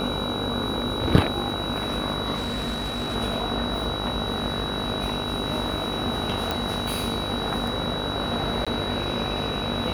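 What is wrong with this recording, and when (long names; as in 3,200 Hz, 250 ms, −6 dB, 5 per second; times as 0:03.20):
mains buzz 50 Hz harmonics 30 −32 dBFS
whistle 3,900 Hz −31 dBFS
0:02.35–0:03.16: clipping −23.5 dBFS
0:06.51: click
0:08.65–0:08.67: drop-out 16 ms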